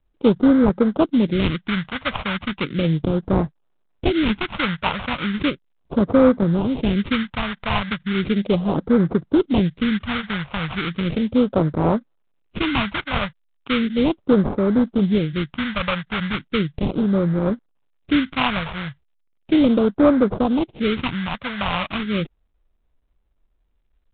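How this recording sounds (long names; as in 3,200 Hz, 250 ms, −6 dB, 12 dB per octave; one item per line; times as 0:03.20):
aliases and images of a low sample rate 1,800 Hz, jitter 20%
phaser sweep stages 2, 0.36 Hz, lowest notch 320–2,700 Hz
mu-law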